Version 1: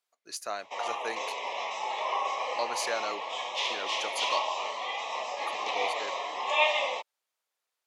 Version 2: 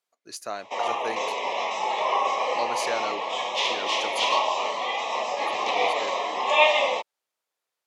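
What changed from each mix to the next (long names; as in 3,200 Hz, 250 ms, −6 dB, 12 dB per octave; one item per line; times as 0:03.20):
background +5.0 dB
master: add low-shelf EQ 340 Hz +12 dB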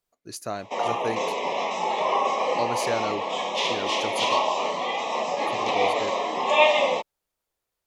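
master: remove meter weighting curve A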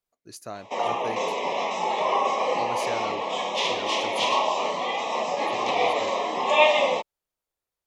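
speech −5.5 dB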